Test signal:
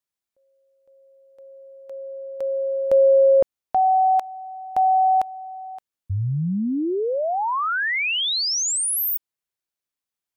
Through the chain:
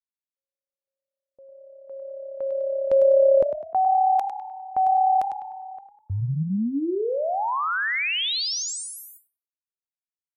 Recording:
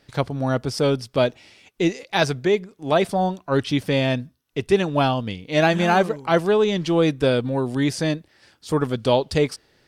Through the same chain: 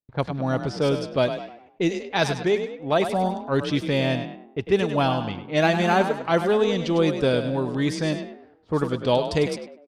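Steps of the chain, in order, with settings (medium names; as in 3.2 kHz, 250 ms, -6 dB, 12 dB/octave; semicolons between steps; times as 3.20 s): gate with hold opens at -47 dBFS, hold 66 ms, range -35 dB; frequency-shifting echo 101 ms, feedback 42%, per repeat +34 Hz, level -9 dB; level-controlled noise filter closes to 760 Hz, open at -16 dBFS; trim -2.5 dB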